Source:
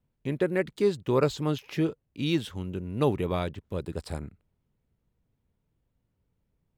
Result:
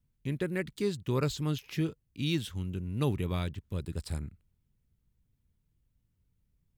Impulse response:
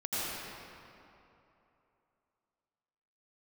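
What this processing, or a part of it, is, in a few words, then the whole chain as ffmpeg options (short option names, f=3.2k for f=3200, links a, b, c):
smiley-face EQ: -af "lowshelf=f=120:g=6.5,equalizer=f=620:t=o:w=2:g=-9,highshelf=f=6.3k:g=5.5,volume=-2dB"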